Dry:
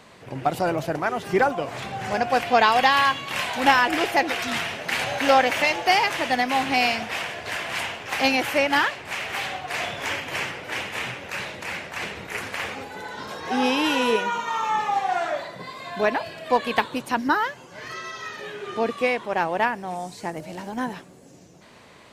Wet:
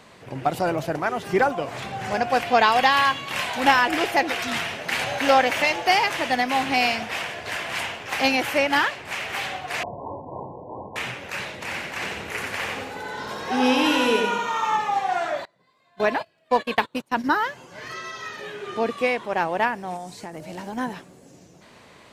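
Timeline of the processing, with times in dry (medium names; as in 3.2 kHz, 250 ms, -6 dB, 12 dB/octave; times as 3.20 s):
9.83–10.96 s: brick-wall FIR low-pass 1.1 kHz
11.52–14.77 s: feedback delay 91 ms, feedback 40%, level -4 dB
15.45–17.24 s: gate -30 dBFS, range -27 dB
19.96–20.47 s: compression, threshold -30 dBFS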